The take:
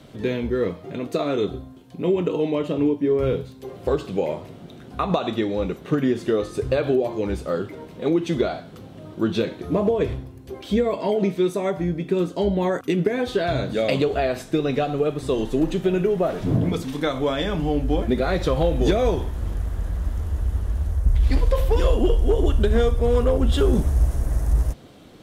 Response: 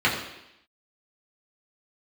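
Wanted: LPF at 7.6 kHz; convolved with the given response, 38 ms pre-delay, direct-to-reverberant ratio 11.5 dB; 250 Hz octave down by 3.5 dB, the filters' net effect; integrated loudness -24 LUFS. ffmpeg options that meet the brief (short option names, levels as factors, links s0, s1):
-filter_complex "[0:a]lowpass=7600,equalizer=f=250:t=o:g=-5,asplit=2[s0][s1];[1:a]atrim=start_sample=2205,adelay=38[s2];[s1][s2]afir=irnorm=-1:irlink=0,volume=0.0355[s3];[s0][s3]amix=inputs=2:normalize=0,volume=1.06"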